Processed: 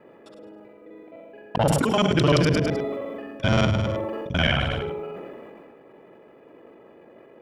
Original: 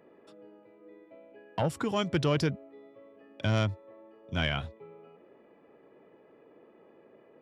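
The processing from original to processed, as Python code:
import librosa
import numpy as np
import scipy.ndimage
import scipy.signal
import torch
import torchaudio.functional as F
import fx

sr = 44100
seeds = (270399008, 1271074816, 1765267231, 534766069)

p1 = fx.local_reverse(x, sr, ms=43.0)
p2 = fx.hum_notches(p1, sr, base_hz=50, count=10)
p3 = p2 + fx.echo_feedback(p2, sr, ms=104, feedback_pct=30, wet_db=-10.0, dry=0)
p4 = fx.sustainer(p3, sr, db_per_s=23.0)
y = F.gain(torch.from_numpy(p4), 8.0).numpy()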